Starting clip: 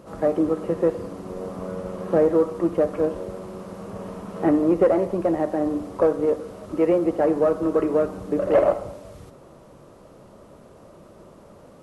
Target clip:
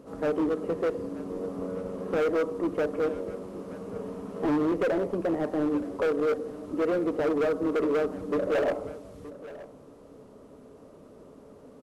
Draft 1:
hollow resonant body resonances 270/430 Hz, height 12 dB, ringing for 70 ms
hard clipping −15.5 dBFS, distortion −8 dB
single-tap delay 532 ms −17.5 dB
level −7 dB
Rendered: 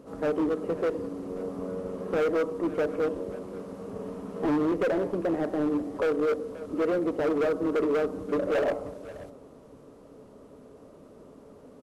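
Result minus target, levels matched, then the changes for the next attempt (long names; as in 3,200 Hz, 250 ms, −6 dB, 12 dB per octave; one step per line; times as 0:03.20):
echo 391 ms early
change: single-tap delay 923 ms −17.5 dB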